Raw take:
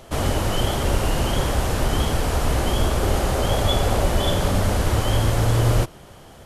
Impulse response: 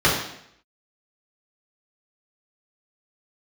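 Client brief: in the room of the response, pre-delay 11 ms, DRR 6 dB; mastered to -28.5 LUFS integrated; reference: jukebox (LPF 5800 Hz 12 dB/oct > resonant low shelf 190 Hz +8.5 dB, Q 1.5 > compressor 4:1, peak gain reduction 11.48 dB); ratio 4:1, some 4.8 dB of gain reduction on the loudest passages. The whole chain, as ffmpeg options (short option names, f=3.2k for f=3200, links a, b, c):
-filter_complex "[0:a]acompressor=threshold=-20dB:ratio=4,asplit=2[a][b];[1:a]atrim=start_sample=2205,adelay=11[c];[b][c]afir=irnorm=-1:irlink=0,volume=-26.5dB[d];[a][d]amix=inputs=2:normalize=0,lowpass=5.8k,lowshelf=f=190:t=q:w=1.5:g=8.5,acompressor=threshold=-20dB:ratio=4,volume=-4dB"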